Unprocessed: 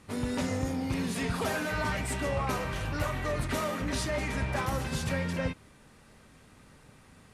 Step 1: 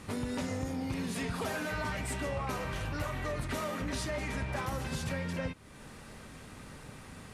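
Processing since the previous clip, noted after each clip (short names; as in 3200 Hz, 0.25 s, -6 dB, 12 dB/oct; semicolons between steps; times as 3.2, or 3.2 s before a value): compressor 2.5:1, threshold -46 dBFS, peak gain reduction 13 dB; gain +7.5 dB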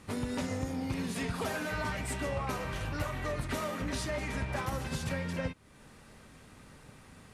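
upward expander 1.5:1, over -47 dBFS; gain +2 dB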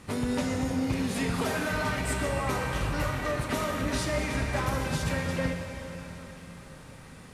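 plate-style reverb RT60 4.2 s, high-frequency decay 0.95×, pre-delay 0 ms, DRR 3.5 dB; gain +4 dB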